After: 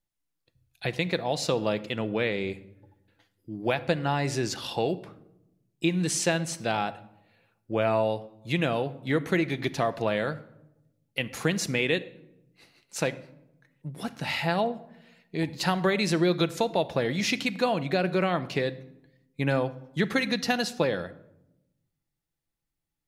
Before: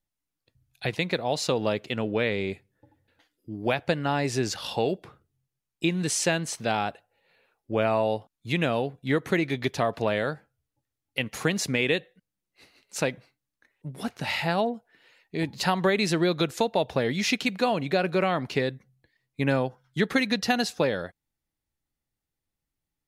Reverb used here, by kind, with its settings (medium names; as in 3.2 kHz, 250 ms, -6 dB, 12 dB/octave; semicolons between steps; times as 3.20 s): simulated room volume 2800 m³, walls furnished, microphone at 0.75 m; trim -1.5 dB